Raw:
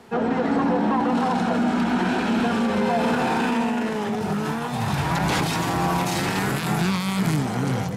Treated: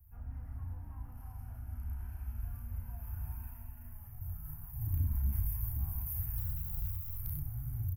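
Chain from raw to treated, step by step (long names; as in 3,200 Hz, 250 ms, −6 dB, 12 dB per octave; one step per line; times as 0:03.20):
0:06.36–0:07.16: running median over 9 samples
inverse Chebyshev band-stop filter 180–8,100 Hz, stop band 50 dB
mains-hum notches 60/120/180/240 Hz
soft clipping −35.5 dBFS, distortion −20 dB
double-tracking delay 34 ms −2.5 dB
level +11.5 dB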